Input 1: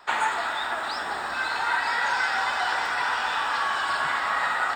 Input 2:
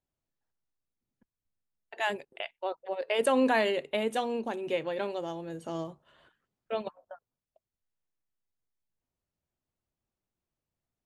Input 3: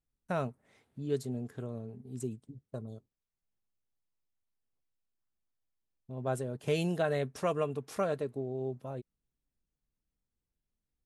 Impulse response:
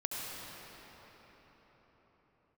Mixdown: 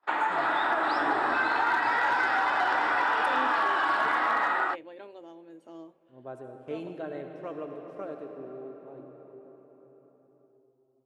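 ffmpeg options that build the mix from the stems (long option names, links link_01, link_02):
-filter_complex "[0:a]lowpass=frequency=1300:poles=1,dynaudnorm=framelen=180:gausssize=5:maxgain=9.5dB,asoftclip=type=hard:threshold=-12.5dB,volume=1dB[link_01];[1:a]volume=-13.5dB,asplit=2[link_02][link_03];[link_03]volume=-21.5dB[link_04];[2:a]lowpass=frequency=1900:poles=1,volume=-11dB,asplit=2[link_05][link_06];[link_06]volume=-3dB[link_07];[link_01][link_05]amix=inputs=2:normalize=0,agate=range=-27dB:threshold=-51dB:ratio=16:detection=peak,acompressor=threshold=-23dB:ratio=6,volume=0dB[link_08];[3:a]atrim=start_sample=2205[link_09];[link_04][link_07]amix=inputs=2:normalize=0[link_10];[link_10][link_09]afir=irnorm=-1:irlink=0[link_11];[link_02][link_08][link_11]amix=inputs=3:normalize=0,bass=frequency=250:gain=-11,treble=frequency=4000:gain=-5,equalizer=frequency=310:width_type=o:width=0.3:gain=13.5"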